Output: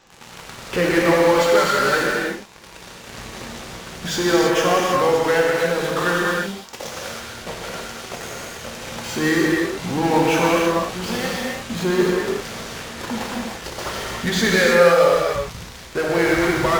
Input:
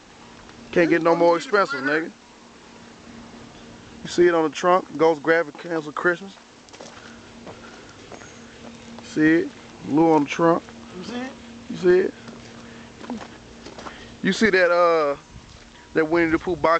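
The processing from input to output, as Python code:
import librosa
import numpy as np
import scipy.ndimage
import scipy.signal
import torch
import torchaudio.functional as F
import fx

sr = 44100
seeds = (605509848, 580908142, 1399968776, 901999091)

p1 = fx.peak_eq(x, sr, hz=280.0, db=-12.0, octaves=0.37)
p2 = fx.fuzz(p1, sr, gain_db=44.0, gate_db=-40.0)
p3 = p1 + (p2 * 10.0 ** (-7.0 / 20.0))
p4 = fx.rev_gated(p3, sr, seeds[0], gate_ms=360, shape='flat', drr_db=-3.5)
y = p4 * 10.0 ** (-6.5 / 20.0)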